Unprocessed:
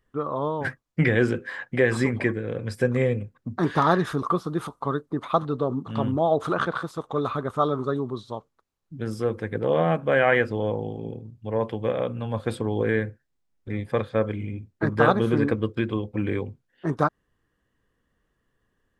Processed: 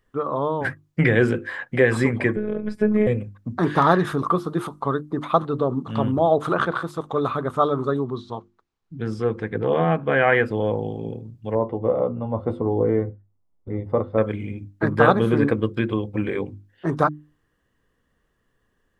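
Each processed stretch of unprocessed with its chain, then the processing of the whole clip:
2.36–3.07 s: robot voice 212 Hz + low-pass 1.6 kHz 6 dB/octave + bass shelf 350 Hz +7 dB
8.04–10.46 s: distance through air 83 m + band-stop 570 Hz, Q 5.9
11.55–14.18 s: Savitzky-Golay filter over 65 samples + doubling 12 ms -8 dB
whole clip: hum notches 50/100/150/200/250/300/350 Hz; dynamic bell 5.6 kHz, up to -5 dB, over -50 dBFS, Q 1.2; trim +3.5 dB

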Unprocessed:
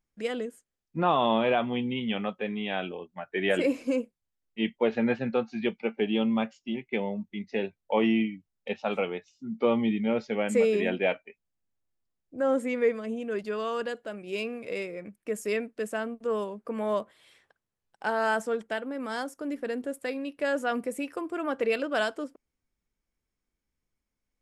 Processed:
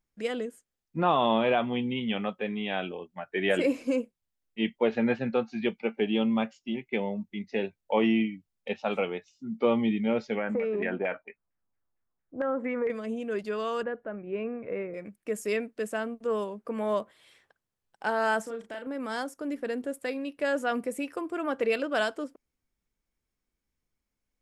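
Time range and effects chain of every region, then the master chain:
10.37–12.90 s: compression 10:1, threshold -26 dBFS + LFO low-pass saw down 4.4 Hz 890–2100 Hz
13.83–14.94 s: low-pass 1.9 kHz 24 dB/octave + bass shelf 140 Hz +6.5 dB
18.43–18.87 s: compression 3:1, threshold -38 dBFS + doubling 35 ms -5.5 dB
whole clip: none

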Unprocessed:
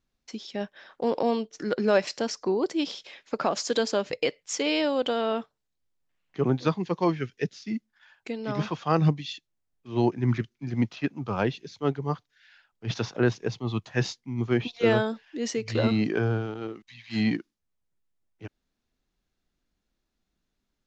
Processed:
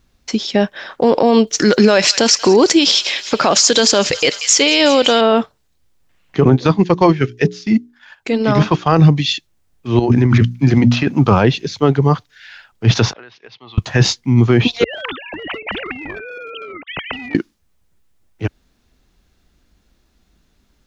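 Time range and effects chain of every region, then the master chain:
1.47–5.21 s: treble shelf 2.1 kHz +11.5 dB + feedback echo behind a high-pass 185 ms, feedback 69%, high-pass 1.9 kHz, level -18 dB
6.41–9.04 s: hum notches 60/120/180/240/300/360/420 Hz + transient shaper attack -4 dB, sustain -8 dB
9.99–11.32 s: hum notches 60/120/180/240 Hz + compressor with a negative ratio -30 dBFS
13.13–13.78 s: Bessel low-pass 2.4 kHz, order 6 + differentiator + compression 12:1, threshold -52 dBFS
14.84–17.35 s: formants replaced by sine waves + compression 5:1, threshold -33 dBFS + spectrum-flattening compressor 4:1
whole clip: peaking EQ 63 Hz +7 dB 1.4 oct; loudness maximiser +19.5 dB; trim -1 dB

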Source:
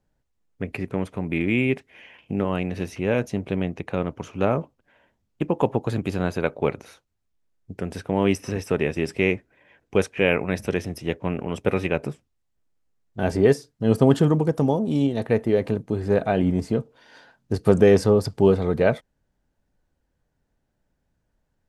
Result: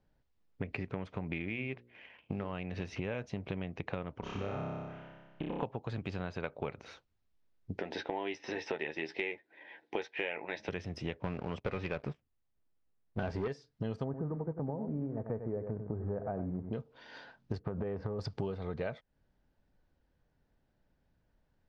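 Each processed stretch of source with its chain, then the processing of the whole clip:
1.49–2.53 s: companding laws mixed up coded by A + low-pass 3.8 kHz + hum notches 60/120/180/240/300/360/420/480/540 Hz
4.20–5.63 s: compression 4:1, threshold -33 dBFS + distance through air 73 m + flutter echo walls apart 5.2 m, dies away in 1.4 s
7.79–10.69 s: cabinet simulation 320–6000 Hz, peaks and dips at 330 Hz +7 dB, 860 Hz +8 dB, 1.2 kHz -8 dB, 1.9 kHz +7 dB, 3.7 kHz +7 dB + doubling 13 ms -7 dB
11.24–13.48 s: low-pass 3.3 kHz 6 dB/octave + waveshaping leveller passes 2
14.04–16.73 s: block-companded coder 5-bit + Gaussian low-pass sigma 7.3 samples + delay 95 ms -9.5 dB
17.59–18.19 s: low-pass 1.3 kHz + compression 5:1, threshold -18 dBFS
whole clip: low-pass 5.2 kHz 24 dB/octave; dynamic bell 300 Hz, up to -6 dB, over -33 dBFS, Q 0.86; compression 10:1, threshold -32 dBFS; trim -1 dB

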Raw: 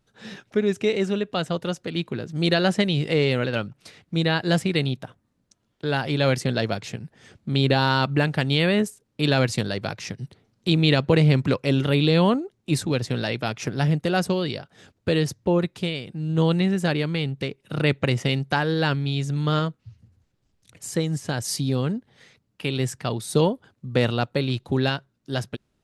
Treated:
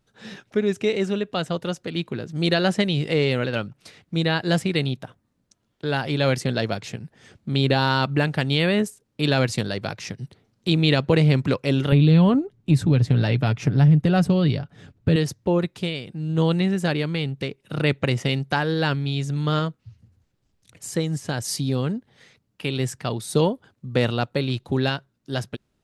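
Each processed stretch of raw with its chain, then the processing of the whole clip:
11.92–15.16 s: tone controls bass +12 dB, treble -6 dB + comb 7 ms, depth 31% + compression 2.5:1, threshold -14 dBFS
whole clip: none

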